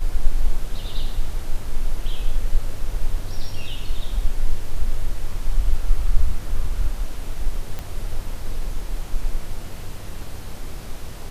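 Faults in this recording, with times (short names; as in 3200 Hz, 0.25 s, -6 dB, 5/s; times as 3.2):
7.79 pop -16 dBFS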